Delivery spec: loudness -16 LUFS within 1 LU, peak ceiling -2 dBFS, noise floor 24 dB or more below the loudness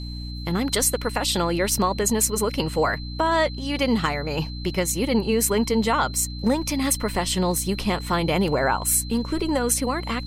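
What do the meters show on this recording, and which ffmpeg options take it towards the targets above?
hum 60 Hz; harmonics up to 300 Hz; hum level -30 dBFS; steady tone 4100 Hz; tone level -39 dBFS; loudness -23.0 LUFS; peak -6.5 dBFS; loudness target -16.0 LUFS
-> -af "bandreject=f=60:t=h:w=4,bandreject=f=120:t=h:w=4,bandreject=f=180:t=h:w=4,bandreject=f=240:t=h:w=4,bandreject=f=300:t=h:w=4"
-af "bandreject=f=4.1k:w=30"
-af "volume=7dB,alimiter=limit=-2dB:level=0:latency=1"

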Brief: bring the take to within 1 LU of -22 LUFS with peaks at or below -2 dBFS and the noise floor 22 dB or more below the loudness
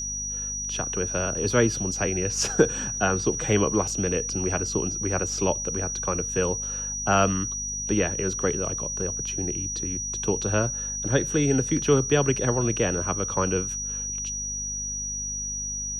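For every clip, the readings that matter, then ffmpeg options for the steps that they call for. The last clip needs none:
hum 50 Hz; harmonics up to 250 Hz; hum level -37 dBFS; steady tone 5800 Hz; tone level -29 dBFS; loudness -25.0 LUFS; peak -6.0 dBFS; loudness target -22.0 LUFS
-> -af "bandreject=f=50:t=h:w=4,bandreject=f=100:t=h:w=4,bandreject=f=150:t=h:w=4,bandreject=f=200:t=h:w=4,bandreject=f=250:t=h:w=4"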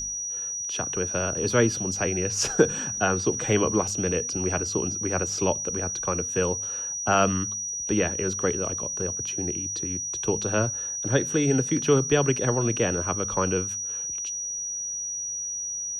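hum none; steady tone 5800 Hz; tone level -29 dBFS
-> -af "bandreject=f=5.8k:w=30"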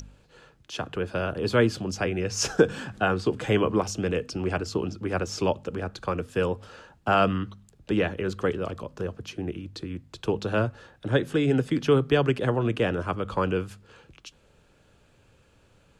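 steady tone none; loudness -27.0 LUFS; peak -6.0 dBFS; loudness target -22.0 LUFS
-> -af "volume=5dB,alimiter=limit=-2dB:level=0:latency=1"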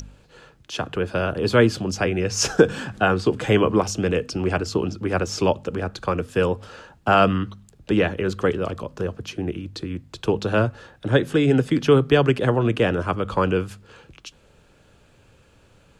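loudness -22.0 LUFS; peak -2.0 dBFS; noise floor -56 dBFS

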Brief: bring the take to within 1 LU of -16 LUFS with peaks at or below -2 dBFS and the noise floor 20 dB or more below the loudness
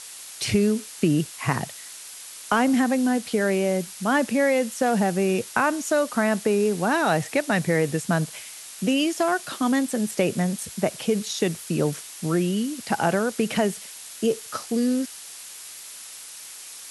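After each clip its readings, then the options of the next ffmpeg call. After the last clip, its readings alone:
noise floor -41 dBFS; noise floor target -44 dBFS; loudness -24.0 LUFS; peak -8.0 dBFS; loudness target -16.0 LUFS
-> -af "afftdn=nr=6:nf=-41"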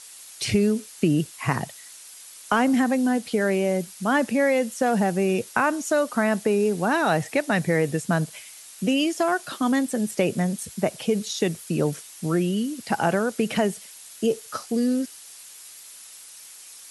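noise floor -45 dBFS; loudness -24.0 LUFS; peak -8.5 dBFS; loudness target -16.0 LUFS
-> -af "volume=8dB,alimiter=limit=-2dB:level=0:latency=1"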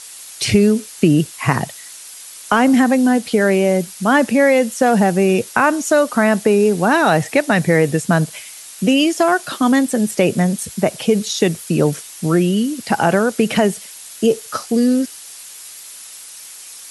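loudness -16.0 LUFS; peak -2.0 dBFS; noise floor -37 dBFS

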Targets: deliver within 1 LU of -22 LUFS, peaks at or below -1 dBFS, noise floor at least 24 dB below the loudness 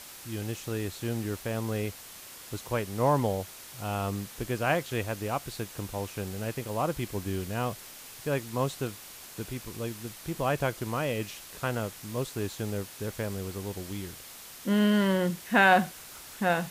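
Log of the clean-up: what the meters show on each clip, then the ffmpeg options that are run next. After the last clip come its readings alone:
noise floor -47 dBFS; noise floor target -55 dBFS; loudness -30.5 LUFS; peak -8.5 dBFS; loudness target -22.0 LUFS
-> -af "afftdn=nr=8:nf=-47"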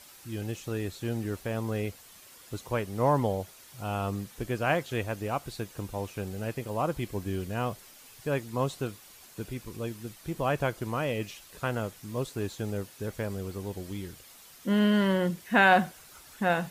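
noise floor -53 dBFS; noise floor target -55 dBFS
-> -af "afftdn=nr=6:nf=-53"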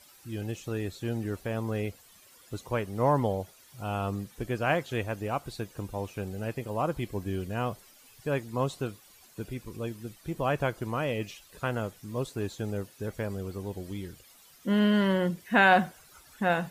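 noise floor -57 dBFS; loudness -31.0 LUFS; peak -8.5 dBFS; loudness target -22.0 LUFS
-> -af "volume=9dB,alimiter=limit=-1dB:level=0:latency=1"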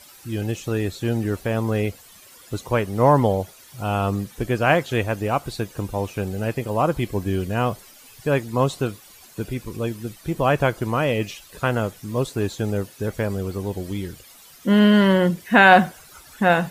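loudness -22.0 LUFS; peak -1.0 dBFS; noise floor -48 dBFS

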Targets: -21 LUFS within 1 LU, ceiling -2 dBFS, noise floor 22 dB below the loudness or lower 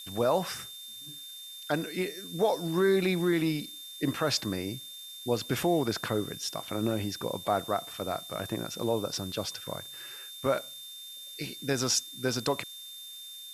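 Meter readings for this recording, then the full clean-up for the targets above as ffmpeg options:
steady tone 3600 Hz; tone level -43 dBFS; noise floor -45 dBFS; noise floor target -54 dBFS; loudness -31.5 LUFS; peak -13.5 dBFS; loudness target -21.0 LUFS
-> -af "bandreject=f=3.6k:w=30"
-af "afftdn=nr=9:nf=-45"
-af "volume=10.5dB"

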